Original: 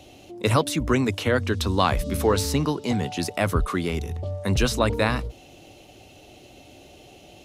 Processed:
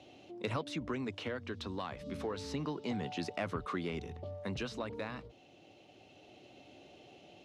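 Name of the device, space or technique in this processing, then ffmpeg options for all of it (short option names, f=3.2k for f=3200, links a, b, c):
AM radio: -af "highpass=130,lowpass=4.3k,acompressor=threshold=-24dB:ratio=4,asoftclip=type=tanh:threshold=-15dB,tremolo=f=0.29:d=0.38,volume=-7.5dB"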